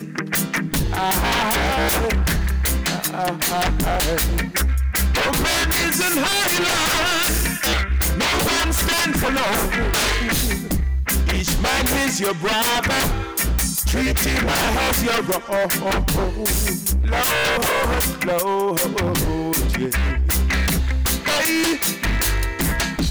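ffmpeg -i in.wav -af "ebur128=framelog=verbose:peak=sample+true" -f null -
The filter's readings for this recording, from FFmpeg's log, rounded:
Integrated loudness:
  I:         -19.4 LUFS
  Threshold: -29.4 LUFS
Loudness range:
  LRA:         2.0 LU
  Threshold: -39.3 LUFS
  LRA low:   -20.1 LUFS
  LRA high:  -18.1 LUFS
Sample peak:
  Peak:      -14.2 dBFS
True peak:
  Peak:       -9.2 dBFS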